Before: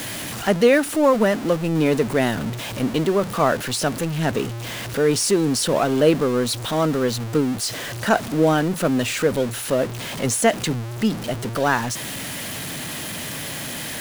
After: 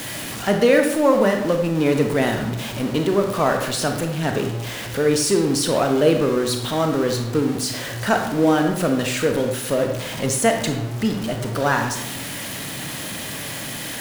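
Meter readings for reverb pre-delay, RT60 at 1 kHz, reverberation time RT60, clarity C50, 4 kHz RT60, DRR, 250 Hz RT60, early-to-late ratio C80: 26 ms, 0.85 s, 0.85 s, 6.0 dB, 0.55 s, 4.0 dB, 0.90 s, 9.0 dB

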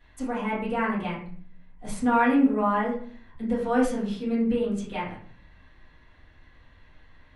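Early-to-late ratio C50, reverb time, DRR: 4.5 dB, 0.50 s, -10.0 dB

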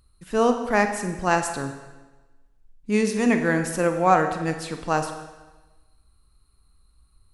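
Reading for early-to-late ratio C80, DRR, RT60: 9.5 dB, 6.0 dB, 1.2 s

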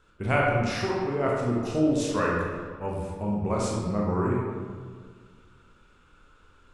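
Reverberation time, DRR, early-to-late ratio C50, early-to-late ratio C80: 1.8 s, -4.0 dB, -0.5 dB, 1.5 dB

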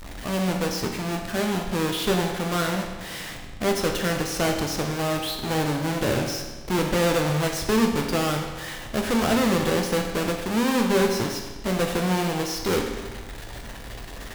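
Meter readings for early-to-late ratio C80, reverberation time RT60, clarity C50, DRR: 6.5 dB, 1.3 s, 5.0 dB, 2.0 dB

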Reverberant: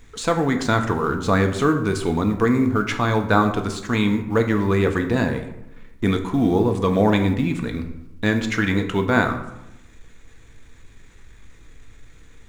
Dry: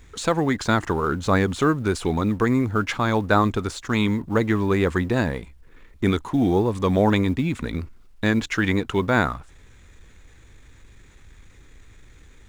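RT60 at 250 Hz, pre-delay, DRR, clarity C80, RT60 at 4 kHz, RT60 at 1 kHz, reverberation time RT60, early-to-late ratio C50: 1.1 s, 4 ms, 5.0 dB, 12.0 dB, 0.55 s, 0.90 s, 0.90 s, 9.5 dB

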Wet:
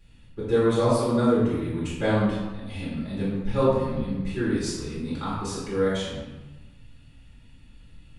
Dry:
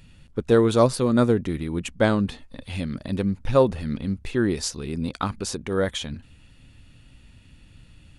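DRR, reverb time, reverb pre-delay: -11.5 dB, 1.2 s, 3 ms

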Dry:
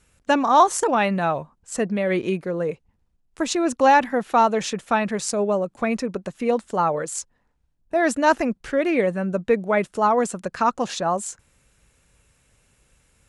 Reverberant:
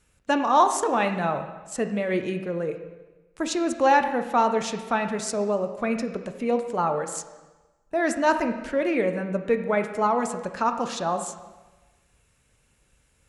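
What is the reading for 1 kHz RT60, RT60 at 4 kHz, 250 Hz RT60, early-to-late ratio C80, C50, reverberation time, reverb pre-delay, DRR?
1.2 s, 1.1 s, 1.2 s, 10.5 dB, 9.0 dB, 1.2 s, 4 ms, 6.5 dB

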